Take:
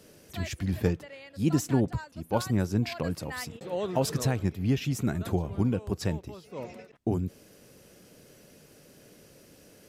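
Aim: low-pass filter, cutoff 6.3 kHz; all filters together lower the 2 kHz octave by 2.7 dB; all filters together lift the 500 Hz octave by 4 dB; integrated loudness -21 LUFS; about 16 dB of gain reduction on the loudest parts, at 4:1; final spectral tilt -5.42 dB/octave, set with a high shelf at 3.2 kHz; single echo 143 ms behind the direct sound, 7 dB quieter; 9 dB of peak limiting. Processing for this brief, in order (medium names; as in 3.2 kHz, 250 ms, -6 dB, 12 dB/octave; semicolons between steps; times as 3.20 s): low-pass 6.3 kHz; peaking EQ 500 Hz +5 dB; peaking EQ 2 kHz -6 dB; treble shelf 3.2 kHz +6.5 dB; compression 4:1, threshold -38 dBFS; peak limiter -32.5 dBFS; delay 143 ms -7 dB; trim +23 dB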